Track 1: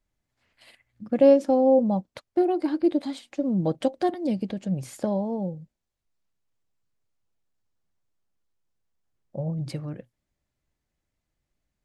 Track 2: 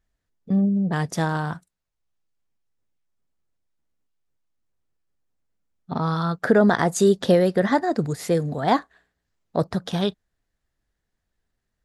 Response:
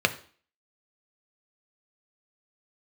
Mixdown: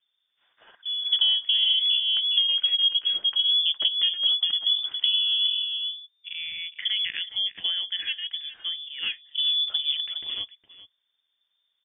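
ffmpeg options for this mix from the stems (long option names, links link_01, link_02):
-filter_complex "[0:a]equalizer=frequency=230:width_type=o:width=1.9:gain=7,volume=1dB,asplit=2[link_01][link_02];[link_02]volume=-8dB[link_03];[1:a]adelay=350,volume=-10.5dB,asplit=2[link_04][link_05];[link_05]volume=-16dB[link_06];[link_03][link_06]amix=inputs=2:normalize=0,aecho=0:1:412:1[link_07];[link_01][link_04][link_07]amix=inputs=3:normalize=0,lowpass=frequency=3100:width_type=q:width=0.5098,lowpass=frequency=3100:width_type=q:width=0.6013,lowpass=frequency=3100:width_type=q:width=0.9,lowpass=frequency=3100:width_type=q:width=2.563,afreqshift=-3600,acompressor=threshold=-20dB:ratio=5"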